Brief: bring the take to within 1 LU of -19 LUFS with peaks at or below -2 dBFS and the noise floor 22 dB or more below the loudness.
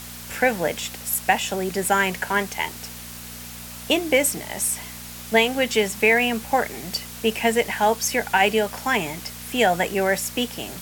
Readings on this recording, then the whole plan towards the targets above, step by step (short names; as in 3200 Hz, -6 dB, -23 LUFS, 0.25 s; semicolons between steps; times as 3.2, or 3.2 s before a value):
hum 60 Hz; harmonics up to 240 Hz; hum level -40 dBFS; noise floor -38 dBFS; noise floor target -44 dBFS; loudness -22.0 LUFS; peak -3.0 dBFS; loudness target -19.0 LUFS
-> de-hum 60 Hz, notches 4; denoiser 6 dB, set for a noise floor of -38 dBFS; gain +3 dB; limiter -2 dBFS